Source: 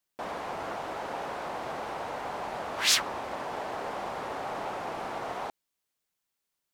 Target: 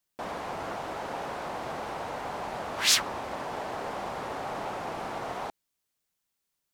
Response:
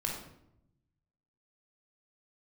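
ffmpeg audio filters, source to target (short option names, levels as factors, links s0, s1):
-af "bass=f=250:g=4,treble=f=4000:g=2"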